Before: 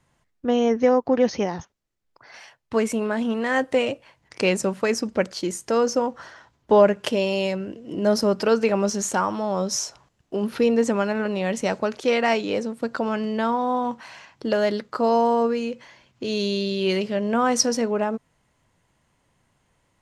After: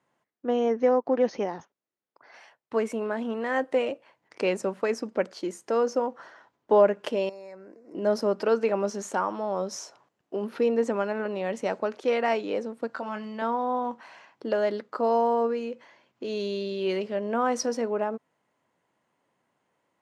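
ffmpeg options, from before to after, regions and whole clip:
-filter_complex "[0:a]asettb=1/sr,asplit=3[a][b][c];[a]atrim=end=7.294[d];[b]atrim=start=7.29:end=7.95,asetpts=PTS-STARTPTS,afade=t=in:d=0.004:c=qsin,afade=t=out:st=0.656:d=0.004:c=qsin,lowshelf=f=420:g=-11,acompressor=threshold=-38dB:ratio=2.5:attack=3.2:release=140:knee=1:detection=peak,asuperstop=centerf=3100:order=4:qfactor=1.5[e];[c]atrim=start=7.946[f];[d][e]acrossfade=d=0.004:c1=hsin:c2=qsin[g];[g][f]acrossfade=d=0.004:c1=qsin:c2=hsin,asettb=1/sr,asplit=3[h][i][j];[h]atrim=end=12.874[k];[i]atrim=start=12.87:end=13.42,asetpts=PTS-STARTPTS,afade=t=in:d=0.004:c=qsin,afade=t=out:st=0.546:d=0.004:c=qsin,equalizer=f=390:w=1.1:g=-10,asplit=2[l][m];[m]adelay=24,volume=-7.5dB[n];[l][n]amix=inputs=2:normalize=0,atrim=end_sample=24255[o];[j]atrim=start=13.416[p];[k][o]acrossfade=d=0.004:c1=hsin:c2=qsin[q];[q][p]acrossfade=d=0.004:c1=qsin:c2=hsin,highpass=280,highshelf=f=2.6k:g=-11.5,volume=-2.5dB"

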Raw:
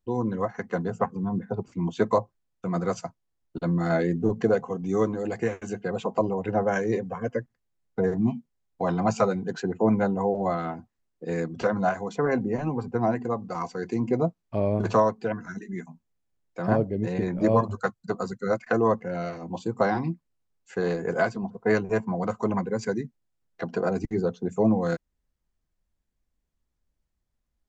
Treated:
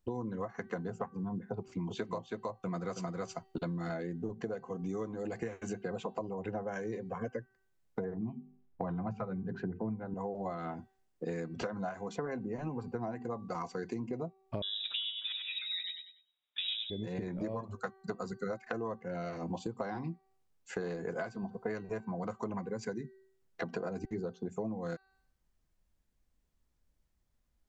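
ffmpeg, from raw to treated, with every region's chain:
-filter_complex "[0:a]asettb=1/sr,asplit=3[a][b][c];[a]atrim=end=1.574[d];[b]atrim=start=1.57:end=3.94,asetpts=PTS-STARTPTS,afade=t=in:d=0.004:c=qsin,afade=t=out:st=2.366:d=0.004:c=qsin,equalizer=f=3.2k:w=0.8:g=5,aecho=1:1:322:0.596,atrim=end_sample=104517[e];[c]atrim=start=3.936[f];[d][e]acrossfade=d=0.004:c1=hsin:c2=qsin[g];[g][f]acrossfade=d=0.004:c1=qsin:c2=hsin,asettb=1/sr,asplit=3[h][i][j];[h]atrim=end=8.044[k];[i]atrim=start=8.04:end=10.14,asetpts=PTS-STARTPTS,afade=t=in:d=0.004:c=qsin,afade=t=out:st=2.096:d=0.004:c=qsin,lowpass=1.9k,bandreject=f=50:t=h:w=6,bandreject=f=100:t=h:w=6,bandreject=f=150:t=h:w=6,bandreject=f=200:t=h:w=6,bandreject=f=250:t=h:w=6,bandreject=f=300:t=h:w=6,bandreject=f=350:t=h:w=6,bandreject=f=400:t=h:w=6,bandreject=f=450:t=h:w=6,asubboost=boost=6.5:cutoff=230[l];[j]atrim=start=10.136[m];[k][l]acrossfade=d=0.004:c1=hsin:c2=qsin[n];[n][m]acrossfade=d=0.004:c1=qsin:c2=hsin,asettb=1/sr,asplit=3[o][p][q];[o]atrim=end=14.624[r];[p]atrim=start=14.62:end=16.9,asetpts=PTS-STARTPTS,afade=t=in:d=0.004:c=qsin,afade=t=out:st=2.276:d=0.004:c=qsin,highpass=190,lowpass=f=3.4k:t=q:w=0.5098,lowpass=f=3.4k:t=q:w=0.6013,lowpass=f=3.4k:t=q:w=0.9,lowpass=f=3.4k:t=q:w=2.563,afreqshift=-4000,aecho=1:1:97|194|291|388:0.473|0.151|0.0485|0.0155,atrim=end_sample=100548[s];[q]atrim=start=16.896[t];[r][s]acrossfade=d=0.004:c1=hsin:c2=qsin[u];[u][t]acrossfade=d=0.004:c1=qsin:c2=hsin,bandreject=f=383.9:t=h:w=4,bandreject=f=767.8:t=h:w=4,bandreject=f=1.1517k:t=h:w=4,bandreject=f=1.5356k:t=h:w=4,bandreject=f=1.9195k:t=h:w=4,bandreject=f=2.3034k:t=h:w=4,bandreject=f=2.6873k:t=h:w=4,bandreject=f=3.0712k:t=h:w=4,bandreject=f=3.4551k:t=h:w=4,bandreject=f=3.839k:t=h:w=4,bandreject=f=4.2229k:t=h:w=4,bandreject=f=4.6068k:t=h:w=4,acompressor=threshold=-36dB:ratio=16,volume=2dB"

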